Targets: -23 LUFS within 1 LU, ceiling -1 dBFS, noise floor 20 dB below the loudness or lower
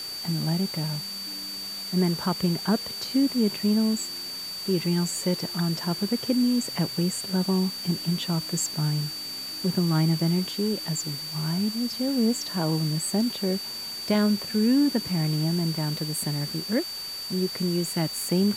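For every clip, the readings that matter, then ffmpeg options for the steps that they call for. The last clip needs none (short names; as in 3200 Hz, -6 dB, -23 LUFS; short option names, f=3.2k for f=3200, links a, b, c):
steady tone 4600 Hz; tone level -33 dBFS; noise floor -35 dBFS; noise floor target -46 dBFS; loudness -26.0 LUFS; peak -11.0 dBFS; loudness target -23.0 LUFS
-> -af "bandreject=f=4.6k:w=30"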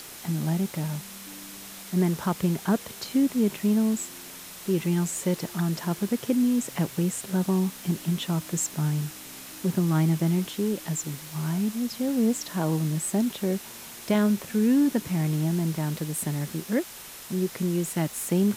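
steady tone none; noise floor -43 dBFS; noise floor target -47 dBFS
-> -af "afftdn=nr=6:nf=-43"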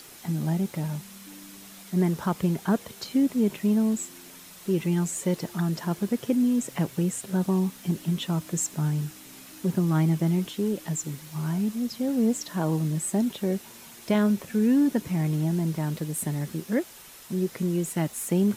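noise floor -47 dBFS; loudness -27.0 LUFS; peak -12.0 dBFS; loudness target -23.0 LUFS
-> -af "volume=4dB"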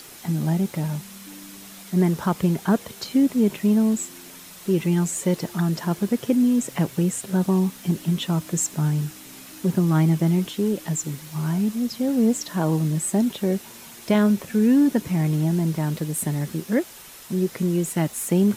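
loudness -23.0 LUFS; peak -8.0 dBFS; noise floor -43 dBFS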